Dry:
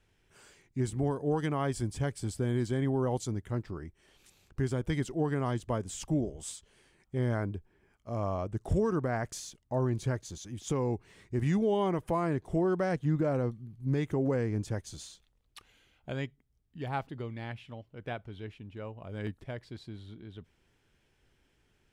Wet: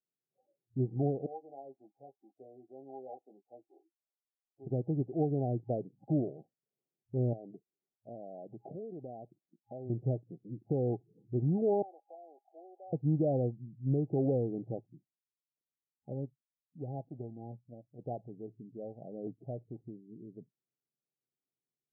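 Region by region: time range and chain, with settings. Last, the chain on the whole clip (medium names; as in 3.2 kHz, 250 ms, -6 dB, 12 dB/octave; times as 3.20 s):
1.26–4.67 s: high-pass 1.2 kHz + doubling 15 ms -4.5 dB
7.33–9.90 s: high-pass 260 Hz 6 dB/octave + compression 3:1, threshold -43 dBFS
11.82–12.93 s: block-companded coder 3-bit + Bessel high-pass 1.2 kHz, order 4 + comb 0.8 ms, depth 54%
14.87–17.99 s: companding laws mixed up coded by A + Shepard-style phaser rising 1.4 Hz
whole clip: FFT band-pass 110–820 Hz; spectral noise reduction 27 dB; dynamic bell 210 Hz, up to -5 dB, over -48 dBFS, Q 3.9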